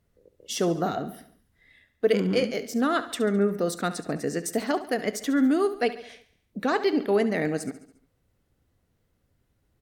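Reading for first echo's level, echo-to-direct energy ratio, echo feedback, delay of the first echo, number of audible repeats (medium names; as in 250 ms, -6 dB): -14.5 dB, -13.0 dB, 54%, 70 ms, 4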